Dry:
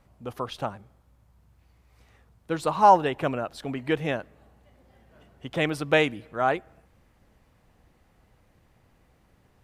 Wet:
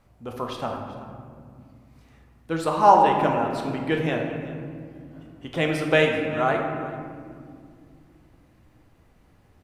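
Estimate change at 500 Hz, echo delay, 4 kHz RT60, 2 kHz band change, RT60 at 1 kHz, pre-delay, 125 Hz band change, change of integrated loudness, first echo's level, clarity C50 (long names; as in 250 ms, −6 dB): +3.0 dB, 383 ms, 1.2 s, +2.5 dB, 1.9 s, 3 ms, +4.0 dB, +2.5 dB, −18.0 dB, 3.5 dB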